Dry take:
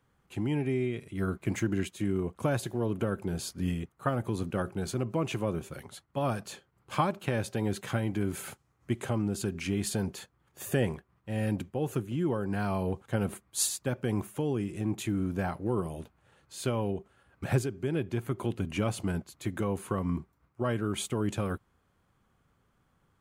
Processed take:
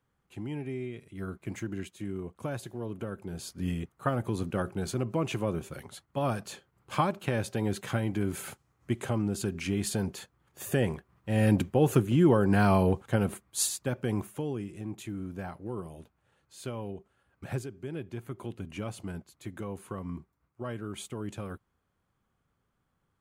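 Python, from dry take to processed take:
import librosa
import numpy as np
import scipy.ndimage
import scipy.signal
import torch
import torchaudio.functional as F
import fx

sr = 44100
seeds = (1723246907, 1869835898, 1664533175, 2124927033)

y = fx.gain(x, sr, db=fx.line((3.25, -6.5), (3.8, 0.5), (10.82, 0.5), (11.62, 8.0), (12.73, 8.0), (13.44, 0.0), (14.13, 0.0), (14.88, -7.0)))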